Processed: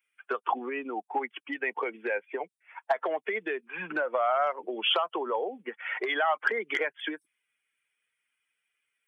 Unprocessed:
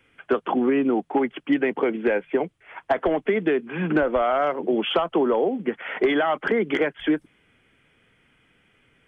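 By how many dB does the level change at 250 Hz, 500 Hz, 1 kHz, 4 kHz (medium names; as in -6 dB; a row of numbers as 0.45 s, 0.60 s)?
-17.0 dB, -9.5 dB, -3.0 dB, no reading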